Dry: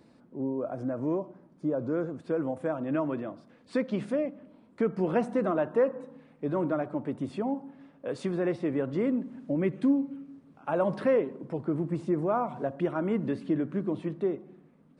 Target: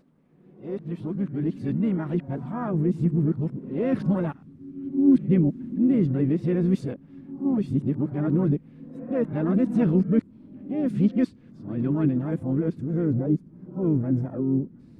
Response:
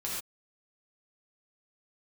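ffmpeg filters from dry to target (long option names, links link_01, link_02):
-filter_complex "[0:a]areverse,asplit=2[link_01][link_02];[link_02]asetrate=58866,aresample=44100,atempo=0.749154,volume=-10dB[link_03];[link_01][link_03]amix=inputs=2:normalize=0,asubboost=boost=11.5:cutoff=200,volume=-3dB"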